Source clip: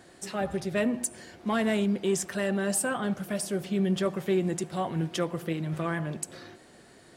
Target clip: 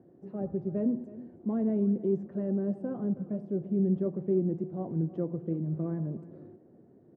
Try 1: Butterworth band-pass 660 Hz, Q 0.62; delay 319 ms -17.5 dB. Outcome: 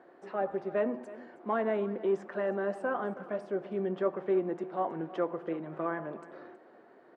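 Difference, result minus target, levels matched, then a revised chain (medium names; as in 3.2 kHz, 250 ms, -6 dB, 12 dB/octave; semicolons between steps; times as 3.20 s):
250 Hz band -5.5 dB
Butterworth band-pass 210 Hz, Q 0.62; delay 319 ms -17.5 dB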